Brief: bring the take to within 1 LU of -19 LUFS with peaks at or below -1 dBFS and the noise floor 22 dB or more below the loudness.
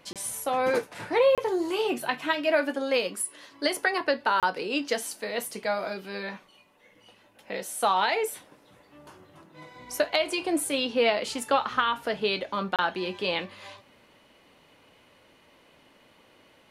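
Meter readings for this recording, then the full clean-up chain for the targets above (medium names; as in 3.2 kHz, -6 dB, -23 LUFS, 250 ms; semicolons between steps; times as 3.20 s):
dropouts 4; longest dropout 27 ms; loudness -27.5 LUFS; peak level -8.5 dBFS; loudness target -19.0 LUFS
-> interpolate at 0.13/1.35/4.40/12.76 s, 27 ms; trim +8.5 dB; peak limiter -1 dBFS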